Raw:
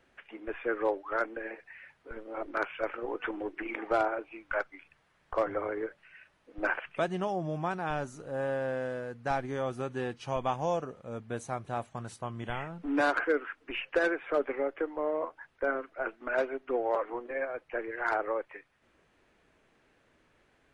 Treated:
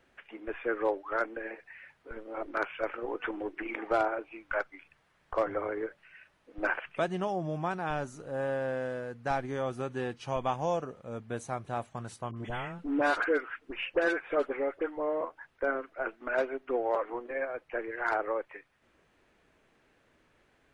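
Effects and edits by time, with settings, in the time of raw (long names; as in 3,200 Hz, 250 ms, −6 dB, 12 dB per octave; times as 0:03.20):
0:12.31–0:15.21: all-pass dispersion highs, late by 58 ms, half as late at 1,200 Hz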